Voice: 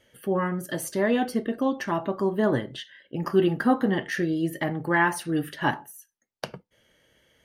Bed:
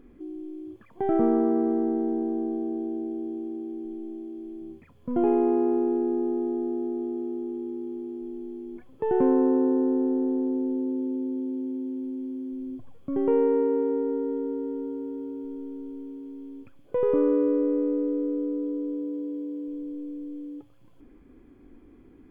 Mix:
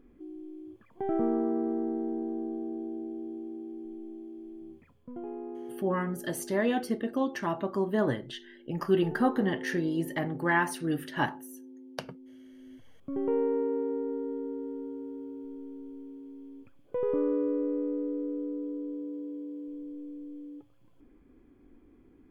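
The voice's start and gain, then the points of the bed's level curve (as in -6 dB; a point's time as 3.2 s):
5.55 s, -4.0 dB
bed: 4.9 s -6 dB
5.21 s -17.5 dB
12.55 s -17.5 dB
13.06 s -6 dB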